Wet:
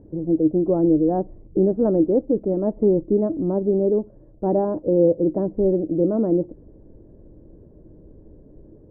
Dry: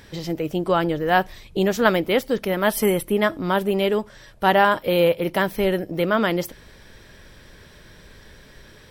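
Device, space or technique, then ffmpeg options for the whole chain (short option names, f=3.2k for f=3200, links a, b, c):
under water: -af "lowpass=f=570:w=0.5412,lowpass=f=570:w=1.3066,equalizer=f=310:t=o:w=0.29:g=11.5,volume=1dB"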